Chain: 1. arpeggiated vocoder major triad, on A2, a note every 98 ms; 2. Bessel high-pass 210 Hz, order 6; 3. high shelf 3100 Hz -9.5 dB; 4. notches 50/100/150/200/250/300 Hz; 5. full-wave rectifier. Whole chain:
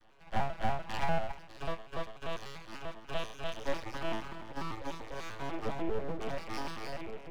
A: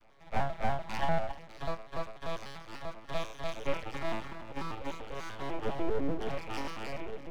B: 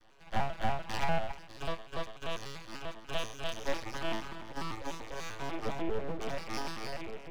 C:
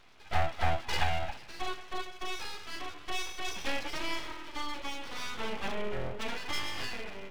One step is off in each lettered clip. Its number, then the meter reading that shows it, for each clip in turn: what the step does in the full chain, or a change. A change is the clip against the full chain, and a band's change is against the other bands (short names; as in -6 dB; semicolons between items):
2, 4 kHz band -2.0 dB; 3, 4 kHz band +3.5 dB; 1, 4 kHz band +7.0 dB